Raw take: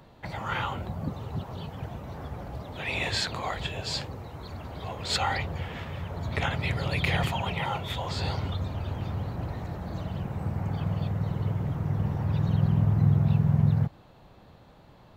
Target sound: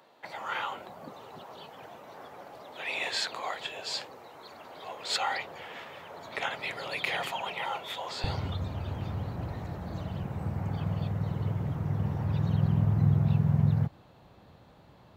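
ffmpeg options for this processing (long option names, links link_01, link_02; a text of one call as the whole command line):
ffmpeg -i in.wav -af "asetnsamples=nb_out_samples=441:pad=0,asendcmd='8.24 highpass f 54',highpass=440,volume=-2dB" out.wav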